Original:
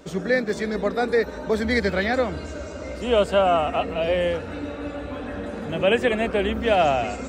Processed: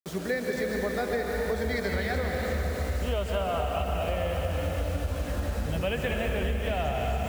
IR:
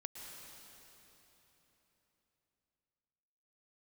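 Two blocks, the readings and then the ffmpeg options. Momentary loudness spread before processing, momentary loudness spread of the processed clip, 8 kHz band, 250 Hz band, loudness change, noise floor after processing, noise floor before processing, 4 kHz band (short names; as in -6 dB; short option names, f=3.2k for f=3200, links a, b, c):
13 LU, 2 LU, n/a, -7.0 dB, -6.5 dB, -34 dBFS, -35 dBFS, -7.0 dB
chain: -filter_complex "[0:a]asubboost=boost=8.5:cutoff=100[a];[1:a]atrim=start_sample=2205,asetrate=37485,aresample=44100[b];[a][b]afir=irnorm=-1:irlink=0,acrusher=bits=6:mix=0:aa=0.000001,acompressor=threshold=-25dB:ratio=6"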